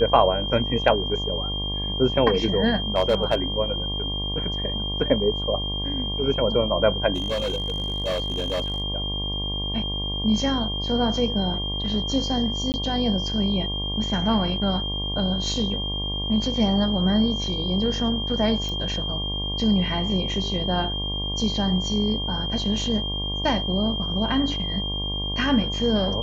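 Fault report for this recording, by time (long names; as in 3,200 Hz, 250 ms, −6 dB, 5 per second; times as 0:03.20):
mains buzz 50 Hz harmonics 23 −30 dBFS
whistle 3,200 Hz −28 dBFS
0:02.96–0:03.35: clipping −13.5 dBFS
0:07.14–0:08.82: clipping −21.5 dBFS
0:12.72–0:12.74: drop-out 19 ms
0:18.69: click −19 dBFS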